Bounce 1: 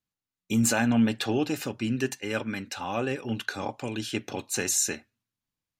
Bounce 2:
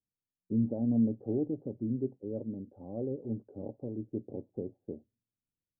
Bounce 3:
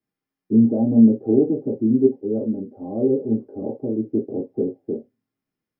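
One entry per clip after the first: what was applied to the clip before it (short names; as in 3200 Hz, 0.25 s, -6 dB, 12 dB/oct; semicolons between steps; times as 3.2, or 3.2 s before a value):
steep low-pass 560 Hz 36 dB/oct; gain -4.5 dB
reverb, pre-delay 3 ms, DRR -3 dB; gain -1 dB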